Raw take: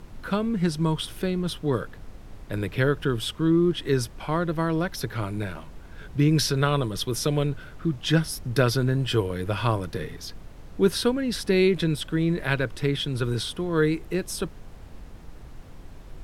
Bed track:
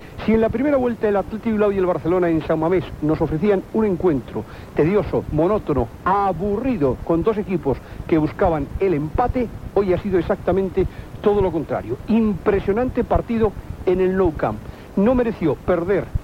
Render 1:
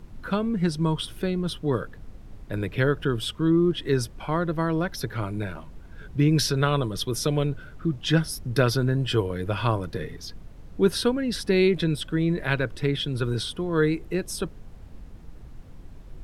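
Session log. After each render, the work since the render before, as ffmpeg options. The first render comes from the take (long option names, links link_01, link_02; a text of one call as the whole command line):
ffmpeg -i in.wav -af "afftdn=noise_reduction=6:noise_floor=-44" out.wav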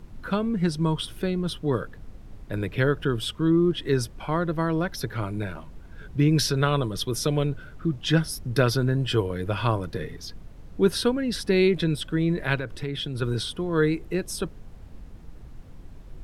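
ffmpeg -i in.wav -filter_complex "[0:a]asettb=1/sr,asplit=3[link_01][link_02][link_03];[link_01]atrim=end=12.554[link_04];[link_02]atrim=start=12.55:end=13.22,asetpts=PTS-STARTPTS,afade=type=in:duration=0.004:curve=qsin,afade=type=out:start_time=0.666:duration=0.004:curve=qsin,acompressor=threshold=-27dB:ratio=3:attack=3.2:release=140:knee=1:detection=peak[link_05];[link_03]atrim=start=13.216[link_06];[link_04][link_05]acrossfade=duration=0.004:curve1=hsin:curve2=qsin[link_07];[link_07][link_06]acrossfade=duration=0.004:curve1=qsin:curve2=hsin" out.wav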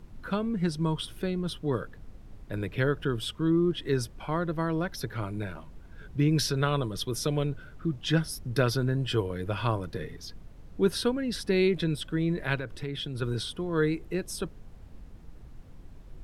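ffmpeg -i in.wav -af "volume=-4dB" out.wav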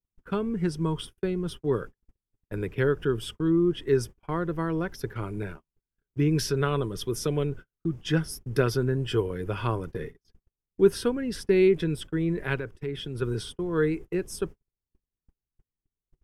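ffmpeg -i in.wav -af "agate=range=-46dB:threshold=-37dB:ratio=16:detection=peak,equalizer=frequency=400:width_type=o:width=0.33:gain=7,equalizer=frequency=630:width_type=o:width=0.33:gain=-5,equalizer=frequency=4000:width_type=o:width=0.33:gain=-10" out.wav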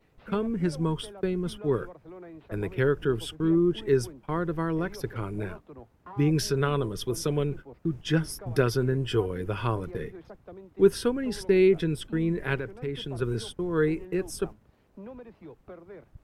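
ffmpeg -i in.wav -i bed.wav -filter_complex "[1:a]volume=-27dB[link_01];[0:a][link_01]amix=inputs=2:normalize=0" out.wav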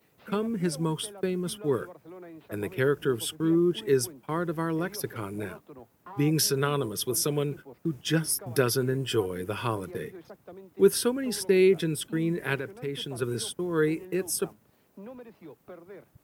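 ffmpeg -i in.wav -af "highpass=130,aemphasis=mode=production:type=50fm" out.wav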